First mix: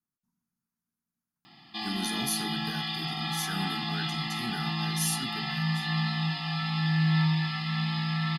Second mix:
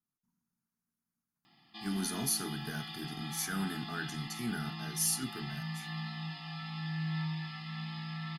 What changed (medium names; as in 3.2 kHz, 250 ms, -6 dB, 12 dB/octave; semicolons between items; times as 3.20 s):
background -11.0 dB; master: add peaking EQ 4 kHz -2.5 dB 0.23 oct